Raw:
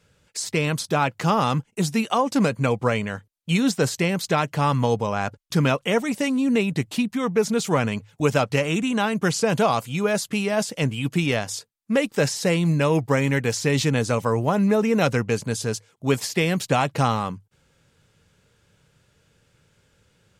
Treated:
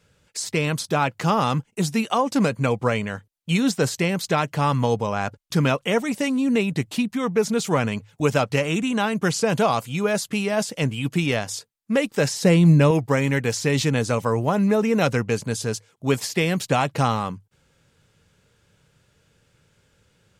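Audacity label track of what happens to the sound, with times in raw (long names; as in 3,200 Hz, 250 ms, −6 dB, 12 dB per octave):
12.410000	12.910000	low-shelf EQ 410 Hz +8 dB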